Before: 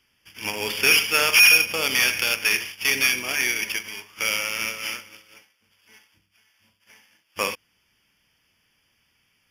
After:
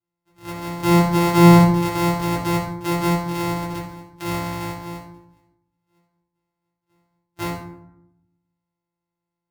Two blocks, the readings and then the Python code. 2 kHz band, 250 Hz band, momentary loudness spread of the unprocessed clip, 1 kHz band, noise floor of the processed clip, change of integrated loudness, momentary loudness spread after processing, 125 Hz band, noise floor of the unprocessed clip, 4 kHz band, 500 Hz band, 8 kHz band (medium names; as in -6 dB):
-11.0 dB, +21.0 dB, 17 LU, +10.5 dB, -84 dBFS, +0.5 dB, 21 LU, +26.5 dB, -68 dBFS, -11.0 dB, +8.5 dB, -9.5 dB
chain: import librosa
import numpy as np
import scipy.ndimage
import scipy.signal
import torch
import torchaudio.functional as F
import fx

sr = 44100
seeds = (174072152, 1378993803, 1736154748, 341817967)

y = np.r_[np.sort(x[:len(x) // 256 * 256].reshape(-1, 256), axis=1).ravel(), x[len(x) // 256 * 256:]]
y = fx.power_curve(y, sr, exponent=1.4)
y = fx.rev_fdn(y, sr, rt60_s=0.81, lf_ratio=1.5, hf_ratio=0.55, size_ms=51.0, drr_db=-8.0)
y = F.gain(torch.from_numpy(y), -7.5).numpy()